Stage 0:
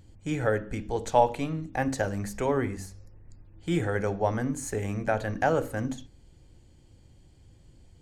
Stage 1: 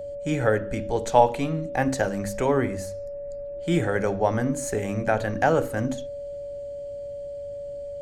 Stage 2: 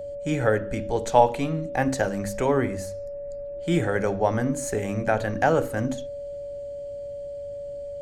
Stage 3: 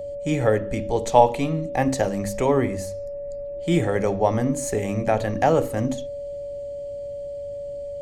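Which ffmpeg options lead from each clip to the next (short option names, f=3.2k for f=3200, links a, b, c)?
-af "bandreject=f=50:t=h:w=6,bandreject=f=100:t=h:w=6,aeval=exprs='val(0)+0.0158*sin(2*PI*570*n/s)':c=same,volume=4dB"
-af anull
-af "equalizer=f=1.5k:t=o:w=0.21:g=-13.5,volume=2.5dB"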